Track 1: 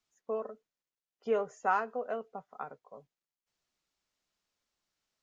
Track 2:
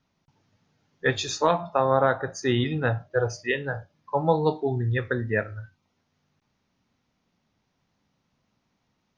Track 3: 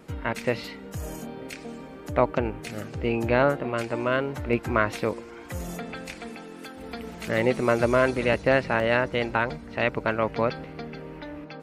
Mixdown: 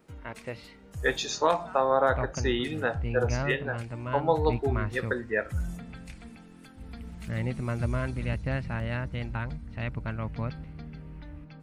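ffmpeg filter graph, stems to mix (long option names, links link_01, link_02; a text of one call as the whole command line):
ffmpeg -i stem1.wav -i stem2.wav -i stem3.wav -filter_complex "[0:a]highpass=1400,volume=-12dB[link_01];[1:a]highpass=270,volume=-2dB[link_02];[2:a]aexciter=amount=1.2:drive=5.2:freq=8400,asubboost=boost=10.5:cutoff=130,volume=-11.5dB[link_03];[link_01][link_02][link_03]amix=inputs=3:normalize=0" out.wav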